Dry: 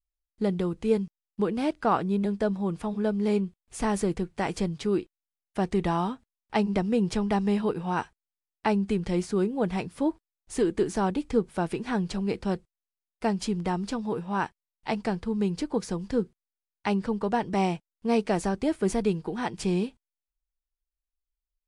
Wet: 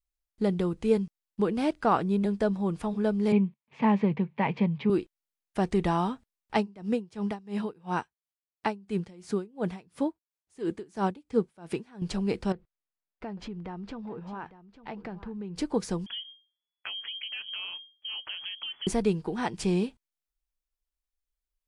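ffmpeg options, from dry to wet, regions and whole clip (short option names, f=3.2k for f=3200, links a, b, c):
-filter_complex "[0:a]asettb=1/sr,asplit=3[a][b][c];[a]atrim=end=3.324[d];[b]atrim=start=3.32:end=4.9,asetpts=PTS-STARTPTS,afade=t=in:d=0.004:c=qsin,afade=t=out:st=1.576:d=0.004:c=qsin,highpass=f=140:w=0.5412,highpass=f=140:w=1.3066,equalizer=f=140:t=q:w=4:g=10,equalizer=f=220:t=q:w=4:g=6,equalizer=f=330:t=q:w=4:g=-9,equalizer=f=940:t=q:w=4:g=7,equalizer=f=1.4k:t=q:w=4:g=-9,equalizer=f=2.3k:t=q:w=4:g=6,lowpass=f=3.1k:w=0.5412,lowpass=f=3.1k:w=1.3066,bandreject=f=730:w=9.8[e];[c]atrim=start=4.896[f];[d][e]acrossfade=d=0.004:c1=hsin:c2=qsin[g];[g][f]acrossfade=d=0.004:c1=qsin:c2=hsin,asettb=1/sr,asplit=3[h][i][j];[h]atrim=end=6.574[k];[i]atrim=start=6.57:end=12.02,asetpts=PTS-STARTPTS,afade=t=in:d=0.004:c=qsin,afade=t=out:st=5.446:d=0.004:c=qsin,highpass=77,aeval=exprs='val(0)*pow(10,-25*(0.5-0.5*cos(2*PI*2.9*n/s))/20)':c=same[l];[j]atrim=start=12.016[m];[k][l]acrossfade=d=0.004:c1=hsin:c2=qsin[n];[n][m]acrossfade=d=0.004:c1=qsin:c2=hsin,asettb=1/sr,asplit=3[o][p][q];[o]atrim=end=12.524[r];[p]atrim=start=12.52:end=15.56,asetpts=PTS-STARTPTS,afade=t=in:d=0.004:c=qsin,afade=t=out:st=3.036:d=0.004:c=qsin,lowpass=2.5k,acompressor=threshold=-38dB:ratio=3:attack=3.2:release=140:knee=1:detection=peak,aecho=1:1:852:0.178,atrim=end_sample=134064[s];[q]atrim=start=15.556[t];[r][s]acrossfade=d=0.004:c1=hsin:c2=qsin[u];[u][t]acrossfade=d=0.004:c1=qsin:c2=hsin,asettb=1/sr,asplit=3[v][w][x];[v]atrim=end=16.064[y];[w]atrim=start=16.06:end=18.87,asetpts=PTS-STARTPTS,afade=t=in:d=0.004:c=qsin,afade=t=out:st=2.806:d=0.004:c=qsin,bandreject=f=60:t=h:w=6,bandreject=f=120:t=h:w=6,bandreject=f=180:t=h:w=6,acompressor=threshold=-35dB:ratio=5:attack=3.2:release=140:knee=1:detection=peak,lowpass=f=2.9k:t=q:w=0.5098,lowpass=f=2.9k:t=q:w=0.6013,lowpass=f=2.9k:t=q:w=0.9,lowpass=f=2.9k:t=q:w=2.563,afreqshift=-3400[z];[x]atrim=start=18.866[aa];[y][z]acrossfade=d=0.004:c1=hsin:c2=qsin[ab];[ab][aa]acrossfade=d=0.004:c1=qsin:c2=hsin"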